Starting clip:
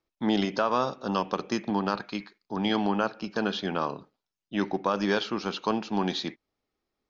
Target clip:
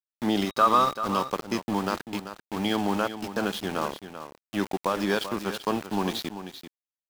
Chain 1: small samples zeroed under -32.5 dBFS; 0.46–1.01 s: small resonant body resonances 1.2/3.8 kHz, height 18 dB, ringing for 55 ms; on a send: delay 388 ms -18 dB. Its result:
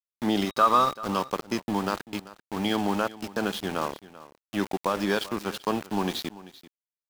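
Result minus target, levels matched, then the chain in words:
echo-to-direct -7 dB
small samples zeroed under -32.5 dBFS; 0.46–1.01 s: small resonant body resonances 1.2/3.8 kHz, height 18 dB, ringing for 55 ms; on a send: delay 388 ms -11 dB

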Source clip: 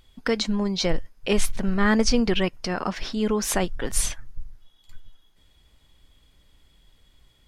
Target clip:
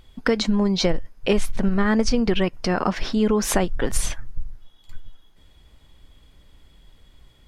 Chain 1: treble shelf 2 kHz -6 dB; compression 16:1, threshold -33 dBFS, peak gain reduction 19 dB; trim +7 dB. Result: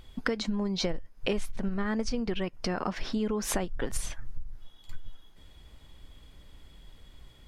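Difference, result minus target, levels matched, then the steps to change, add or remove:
compression: peak gain reduction +11 dB
change: compression 16:1, threshold -21.5 dBFS, peak gain reduction 8 dB

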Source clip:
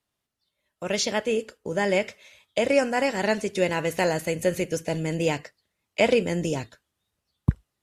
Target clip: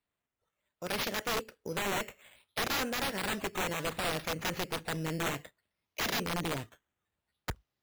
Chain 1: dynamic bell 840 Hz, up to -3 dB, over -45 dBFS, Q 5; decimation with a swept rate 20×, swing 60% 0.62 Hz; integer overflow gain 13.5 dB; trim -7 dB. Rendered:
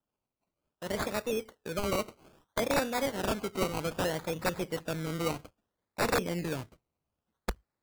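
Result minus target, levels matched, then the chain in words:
integer overflow: distortion -12 dB; decimation with a swept rate: distortion +7 dB
dynamic bell 840 Hz, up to -3 dB, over -45 dBFS, Q 5; decimation with a swept rate 7×, swing 60% 0.62 Hz; integer overflow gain 19.5 dB; trim -7 dB

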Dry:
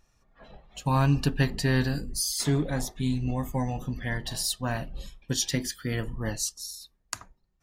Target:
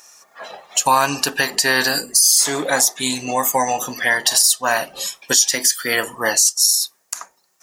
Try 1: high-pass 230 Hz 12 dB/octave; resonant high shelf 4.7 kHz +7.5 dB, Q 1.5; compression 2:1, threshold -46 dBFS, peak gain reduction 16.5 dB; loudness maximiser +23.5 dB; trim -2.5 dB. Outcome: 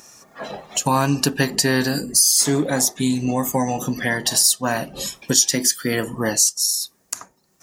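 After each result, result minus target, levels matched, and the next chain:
250 Hz band +10.0 dB; compression: peak gain reduction +5.5 dB
high-pass 700 Hz 12 dB/octave; resonant high shelf 4.7 kHz +7.5 dB, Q 1.5; compression 2:1, threshold -46 dBFS, peak gain reduction 16.5 dB; loudness maximiser +23.5 dB; trim -2.5 dB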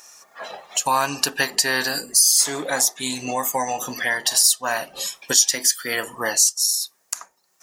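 compression: peak gain reduction +5.5 dB
high-pass 700 Hz 12 dB/octave; resonant high shelf 4.7 kHz +7.5 dB, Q 1.5; compression 2:1, threshold -35 dBFS, peak gain reduction 11 dB; loudness maximiser +23.5 dB; trim -2.5 dB

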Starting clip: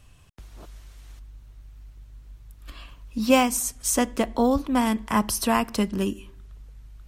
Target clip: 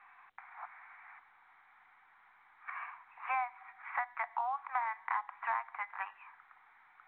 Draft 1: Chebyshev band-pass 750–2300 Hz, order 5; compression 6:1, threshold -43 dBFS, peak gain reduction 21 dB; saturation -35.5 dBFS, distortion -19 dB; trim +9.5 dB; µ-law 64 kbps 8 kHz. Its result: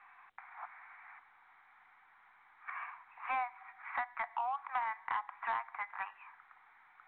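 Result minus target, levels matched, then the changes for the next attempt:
saturation: distortion +16 dB
change: saturation -26 dBFS, distortion -35 dB

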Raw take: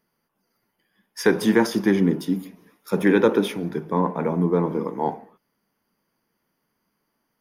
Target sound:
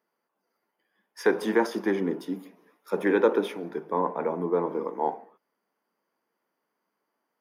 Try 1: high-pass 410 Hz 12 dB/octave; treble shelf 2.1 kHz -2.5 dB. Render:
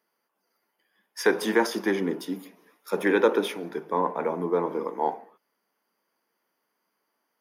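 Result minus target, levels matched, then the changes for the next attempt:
4 kHz band +6.0 dB
change: treble shelf 2.1 kHz -11.5 dB

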